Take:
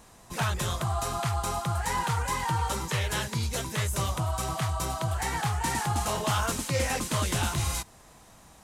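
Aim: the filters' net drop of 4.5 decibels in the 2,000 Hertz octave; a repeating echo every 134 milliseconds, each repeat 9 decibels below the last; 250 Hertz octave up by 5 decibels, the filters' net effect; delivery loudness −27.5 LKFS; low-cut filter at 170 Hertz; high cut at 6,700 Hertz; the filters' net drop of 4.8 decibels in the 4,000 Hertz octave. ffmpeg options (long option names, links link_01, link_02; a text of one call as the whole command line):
ffmpeg -i in.wav -af "highpass=170,lowpass=6700,equalizer=frequency=250:width_type=o:gain=9,equalizer=frequency=2000:width_type=o:gain=-5,equalizer=frequency=4000:width_type=o:gain=-4,aecho=1:1:134|268|402|536:0.355|0.124|0.0435|0.0152,volume=3dB" out.wav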